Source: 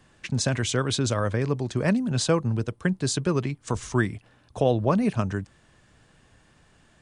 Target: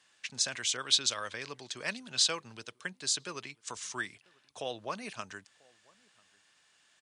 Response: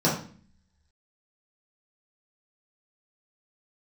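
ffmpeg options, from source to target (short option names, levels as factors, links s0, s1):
-filter_complex "[0:a]asettb=1/sr,asplit=3[s0][s1][s2];[s0]atrim=end=0.774[s3];[s1]atrim=start=0.77:end=2.85,asetpts=PTS-STARTPTS,afade=t=in:d=0.004:c=qsin,afade=t=out:st=2.076:d=0.004:c=qsin,adynamicequalizer=threshold=0.00891:dfrequency=3600:dqfactor=1:tfrequency=3600:tqfactor=1:attack=5:release=100:ratio=0.375:range=3:mode=boostabove:tftype=bell[s4];[s2]atrim=start=2.846[s5];[s3][s4]acrossfade=d=0.004:c1=hsin:c2=qsin[s6];[s6][s5]acrossfade=d=0.004:c1=qsin:c2=hsin,bandpass=f=5000:t=q:w=0.64:csg=0,asplit=2[s7][s8];[s8]adelay=991.3,volume=0.0447,highshelf=f=4000:g=-22.3[s9];[s7][s9]amix=inputs=2:normalize=0"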